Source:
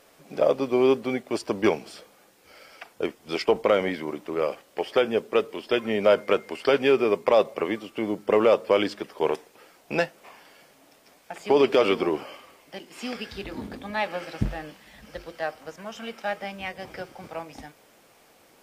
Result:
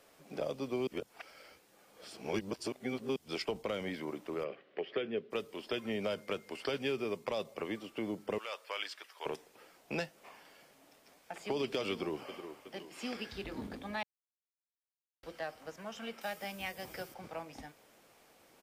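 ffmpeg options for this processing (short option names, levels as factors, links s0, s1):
-filter_complex "[0:a]asplit=3[s0][s1][s2];[s0]afade=t=out:st=4.43:d=0.02[s3];[s1]highpass=f=120:w=0.5412,highpass=f=120:w=1.3066,equalizer=f=400:t=q:w=4:g=7,equalizer=f=880:t=q:w=4:g=-8,equalizer=f=1900:t=q:w=4:g=4,lowpass=f=3300:w=0.5412,lowpass=f=3300:w=1.3066,afade=t=in:st=4.43:d=0.02,afade=t=out:st=5.3:d=0.02[s4];[s2]afade=t=in:st=5.3:d=0.02[s5];[s3][s4][s5]amix=inputs=3:normalize=0,asettb=1/sr,asplit=3[s6][s7][s8];[s6]atrim=end=8.384[s9];[s7]atrim=start=8.38:end=9.26,asetpts=PTS-STARTPTS,afade=t=in:d=0.004:c=qsin,afade=t=out:st=0.876:d=0.004:c=qsin,highpass=1300[s10];[s8]atrim=start=9.256[s11];[s9][s10]acrossfade=d=0.004:c1=hsin:c2=qsin[s12];[s12][s11]acrossfade=d=0.004:c1=qsin:c2=hsin,asplit=2[s13][s14];[s14]afade=t=in:st=11.91:d=0.01,afade=t=out:st=12.31:d=0.01,aecho=0:1:370|740|1110|1480|1850:0.16788|0.0923342|0.0507838|0.0279311|0.0153621[s15];[s13][s15]amix=inputs=2:normalize=0,asettb=1/sr,asplit=3[s16][s17][s18];[s16]atrim=end=16.214[s19];[s17]atrim=start=16.21:end=17.14,asetpts=PTS-STARTPTS,afade=t=in:d=0.004:c=qsin,afade=t=out:st=0.926:d=0.004:c=qsin,aemphasis=mode=production:type=50fm[s20];[s18]atrim=start=17.136[s21];[s19][s20]acrossfade=d=0.004:c1=hsin:c2=qsin[s22];[s22][s21]acrossfade=d=0.004:c1=qsin:c2=hsin,asplit=5[s23][s24][s25][s26][s27];[s23]atrim=end=0.872[s28];[s24]atrim=start=0.868:end=3.162,asetpts=PTS-STARTPTS,areverse[s29];[s25]atrim=start=3.158:end=14.03,asetpts=PTS-STARTPTS,afade=t=out:st=10.868:d=0.004:c=hsin[s30];[s26]atrim=start=14.03:end=15.23,asetpts=PTS-STARTPTS,volume=0[s31];[s27]atrim=start=15.23,asetpts=PTS-STARTPTS,afade=t=in:d=0.004:c=hsin[s32];[s28][s29]acrossfade=d=0.004:c1=hsin:c2=hsin[s33];[s30][s31][s32]concat=n=3:v=0:a=1[s34];[s33][s34]acrossfade=d=0.004:c1=hsin:c2=hsin,acrossover=split=210|3000[s35][s36][s37];[s36]acompressor=threshold=0.0316:ratio=4[s38];[s35][s38][s37]amix=inputs=3:normalize=0,volume=0.473"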